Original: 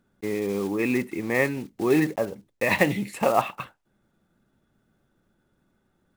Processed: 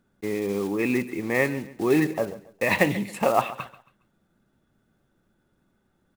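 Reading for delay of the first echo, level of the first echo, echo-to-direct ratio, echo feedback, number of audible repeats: 0.137 s, -17.0 dB, -16.5 dB, 32%, 2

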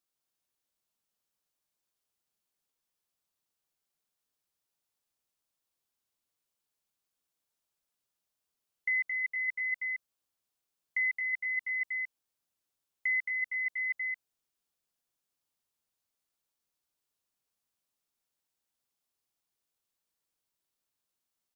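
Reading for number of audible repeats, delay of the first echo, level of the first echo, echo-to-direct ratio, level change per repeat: 1, 0.22 s, -5.0 dB, -5.0 dB, no steady repeat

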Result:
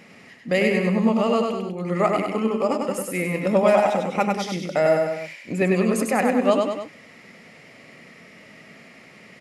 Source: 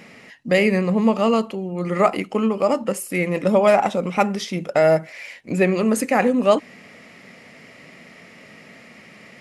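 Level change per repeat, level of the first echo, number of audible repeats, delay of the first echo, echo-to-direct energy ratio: -5.0 dB, -3.5 dB, 3, 98 ms, -2.0 dB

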